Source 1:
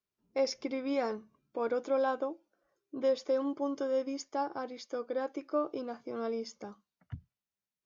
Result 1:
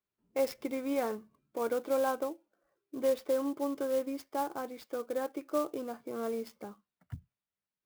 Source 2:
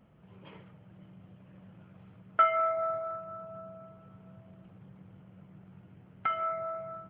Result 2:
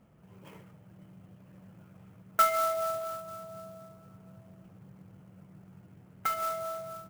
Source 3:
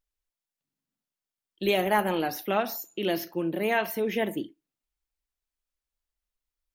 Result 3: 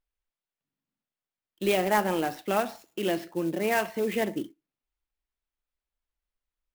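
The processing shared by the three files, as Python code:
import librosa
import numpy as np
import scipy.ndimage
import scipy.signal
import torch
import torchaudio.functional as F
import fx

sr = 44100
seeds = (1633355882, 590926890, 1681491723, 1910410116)

y = scipy.signal.sosfilt(scipy.signal.butter(2, 4100.0, 'lowpass', fs=sr, output='sos'), x)
y = fx.clock_jitter(y, sr, seeds[0], jitter_ms=0.03)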